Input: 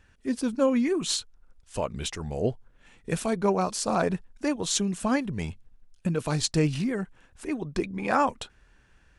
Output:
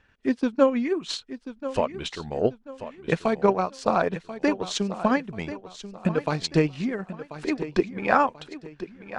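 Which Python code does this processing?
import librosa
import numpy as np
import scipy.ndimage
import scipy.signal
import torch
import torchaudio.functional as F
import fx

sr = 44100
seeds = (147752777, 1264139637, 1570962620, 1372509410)

p1 = scipy.signal.sosfilt(scipy.signal.butter(2, 3900.0, 'lowpass', fs=sr, output='sos'), x)
p2 = fx.low_shelf(p1, sr, hz=140.0, db=-10.5)
p3 = fx.transient(p2, sr, attack_db=7, sustain_db=-7)
p4 = p3 + fx.echo_feedback(p3, sr, ms=1037, feedback_pct=35, wet_db=-13.0, dry=0)
y = p4 * librosa.db_to_amplitude(1.5)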